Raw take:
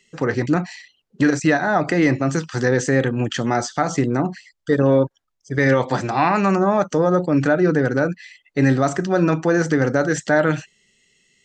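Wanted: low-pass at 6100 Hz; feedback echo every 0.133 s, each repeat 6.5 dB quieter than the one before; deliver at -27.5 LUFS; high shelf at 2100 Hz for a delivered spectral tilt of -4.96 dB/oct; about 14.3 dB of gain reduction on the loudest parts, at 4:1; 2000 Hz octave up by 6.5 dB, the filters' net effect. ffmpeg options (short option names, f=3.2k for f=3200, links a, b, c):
-af "lowpass=6.1k,equalizer=f=2k:t=o:g=4,highshelf=f=2.1k:g=8.5,acompressor=threshold=-28dB:ratio=4,aecho=1:1:133|266|399|532|665|798:0.473|0.222|0.105|0.0491|0.0231|0.0109,volume=1.5dB"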